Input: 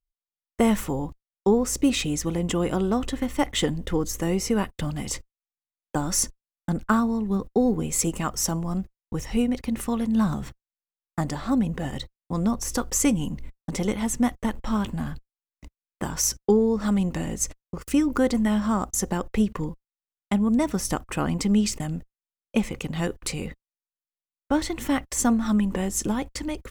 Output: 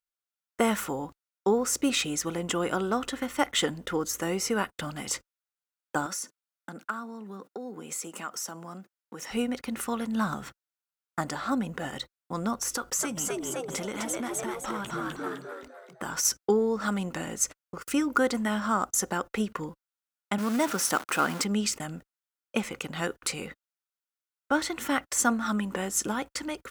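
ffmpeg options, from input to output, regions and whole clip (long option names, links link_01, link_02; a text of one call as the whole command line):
ffmpeg -i in.wav -filter_complex "[0:a]asettb=1/sr,asplit=3[link_01][link_02][link_03];[link_01]atrim=end=6.064[link_04];[link_02]atrim=start=6.06:end=9.3,asetpts=PTS-STARTPTS,afade=type=in:duration=0.004:curve=qsin,afade=type=out:start_time=3.236:duration=0.004:curve=qsin,highpass=frequency=170:width=0.5412,highpass=frequency=170:width=1.3066,acompressor=threshold=-32dB:ratio=5:attack=3.2:release=140:knee=1:detection=peak[link_05];[link_03]atrim=start=9.296[link_06];[link_04][link_05]acrossfade=duration=0.004:curve1=hsin:curve2=qsin[link_07];[link_07][link_06]acrossfade=duration=0.004:curve1=qsin:curve2=hsin,asettb=1/sr,asplit=3[link_08][link_09][link_10];[link_08]atrim=end=12.724[link_11];[link_09]atrim=start=12.72:end=16.25,asetpts=PTS-STARTPTS,afade=type=in:duration=0.004:curve=qsin,afade=type=out:start_time=3.526:duration=0.004:curve=qsin,asplit=6[link_12][link_13][link_14][link_15][link_16][link_17];[link_13]adelay=255,afreqshift=120,volume=-3.5dB[link_18];[link_14]adelay=510,afreqshift=240,volume=-11.9dB[link_19];[link_15]adelay=765,afreqshift=360,volume=-20.3dB[link_20];[link_16]adelay=1020,afreqshift=480,volume=-28.7dB[link_21];[link_17]adelay=1275,afreqshift=600,volume=-37.1dB[link_22];[link_12][link_18][link_19][link_20][link_21][link_22]amix=inputs=6:normalize=0,atrim=end_sample=155673,acompressor=threshold=-24dB:ratio=6:attack=3.2:release=140:knee=1:detection=peak[link_23];[link_10]atrim=start=16.246[link_24];[link_11][link_23]acrossfade=duration=0.004:curve1=hsin:curve2=qsin[link_25];[link_25][link_24]acrossfade=duration=0.004:curve1=qsin:curve2=hsin,asettb=1/sr,asplit=3[link_26][link_27][link_28];[link_26]atrim=end=20.384[link_29];[link_27]atrim=start=20.38:end=21.44,asetpts=PTS-STARTPTS,afade=type=in:duration=0.004:curve=qsin,afade=type=out:start_time=1.056:duration=0.004:curve=qsin,aeval=exprs='val(0)+0.5*0.0316*sgn(val(0))':channel_layout=same,highpass=170,acrusher=bits=6:mode=log:mix=0:aa=0.000001[link_30];[link_28]atrim=start=21.436[link_31];[link_29][link_30]acrossfade=duration=0.004:curve1=hsin:curve2=qsin[link_32];[link_32][link_31]acrossfade=duration=0.004:curve1=qsin:curve2=hsin,highpass=frequency=470:poles=1,equalizer=frequency=1400:width=4.6:gain=9" out.wav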